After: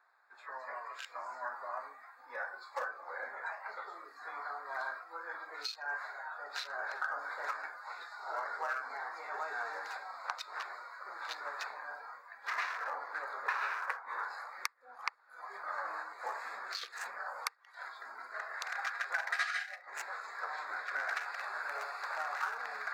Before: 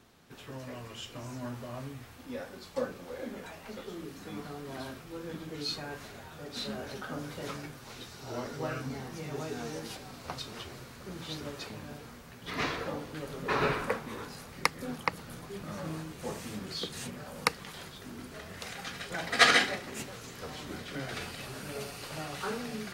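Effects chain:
adaptive Wiener filter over 15 samples
high-pass filter 880 Hz 24 dB per octave
downward compressor 10 to 1, threshold −45 dBFS, peak gain reduction 28.5 dB
thirty-one-band graphic EQ 1,600 Hz +6 dB, 3,150 Hz −8 dB, 10,000 Hz −5 dB
noise reduction from a noise print of the clip's start 11 dB
high-shelf EQ 4,400 Hz −5.5 dB
level +11.5 dB

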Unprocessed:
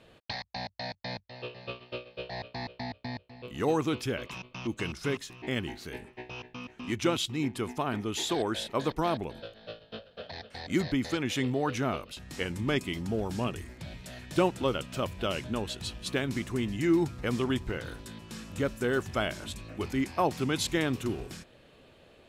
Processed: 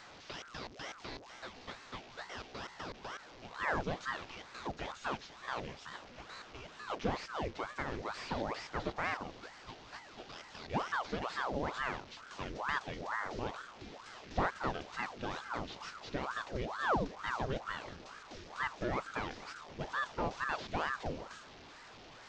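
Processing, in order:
linear delta modulator 32 kbit/s, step −40.5 dBFS
ring modulator whose carrier an LFO sweeps 800 Hz, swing 85%, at 2.2 Hz
level −4.5 dB

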